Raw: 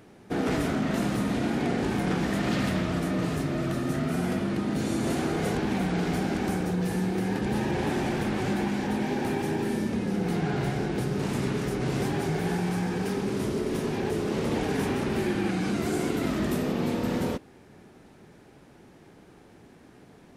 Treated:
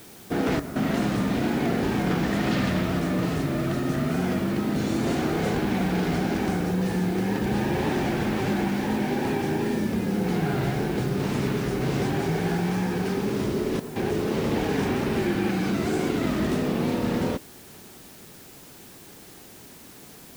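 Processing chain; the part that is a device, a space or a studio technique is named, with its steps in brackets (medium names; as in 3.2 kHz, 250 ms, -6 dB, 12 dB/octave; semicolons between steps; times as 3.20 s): worn cassette (low-pass 6.9 kHz; wow and flutter; level dips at 0.60/13.80 s, 156 ms -10 dB; white noise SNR 23 dB); trim +2.5 dB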